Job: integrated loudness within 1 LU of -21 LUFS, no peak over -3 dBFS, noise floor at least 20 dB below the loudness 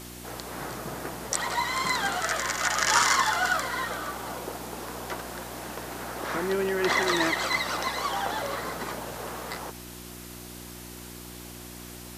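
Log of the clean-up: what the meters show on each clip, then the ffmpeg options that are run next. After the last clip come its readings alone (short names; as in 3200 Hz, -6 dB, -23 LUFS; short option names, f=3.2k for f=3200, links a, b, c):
hum 60 Hz; harmonics up to 360 Hz; hum level -43 dBFS; noise floor -43 dBFS; noise floor target -48 dBFS; loudness -28.0 LUFS; peak -7.0 dBFS; loudness target -21.0 LUFS
-> -af "bandreject=f=60:t=h:w=4,bandreject=f=120:t=h:w=4,bandreject=f=180:t=h:w=4,bandreject=f=240:t=h:w=4,bandreject=f=300:t=h:w=4,bandreject=f=360:t=h:w=4"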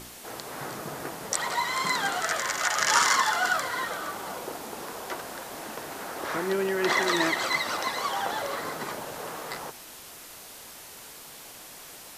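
hum none; noise floor -46 dBFS; noise floor target -48 dBFS
-> -af "afftdn=nr=6:nf=-46"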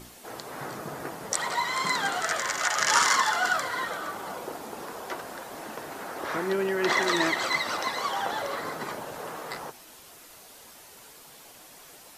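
noise floor -50 dBFS; loudness -28.0 LUFS; peak -7.0 dBFS; loudness target -21.0 LUFS
-> -af "volume=7dB,alimiter=limit=-3dB:level=0:latency=1"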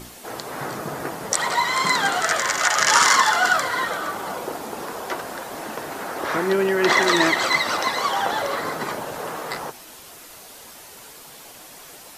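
loudness -21.0 LUFS; peak -3.0 dBFS; noise floor -43 dBFS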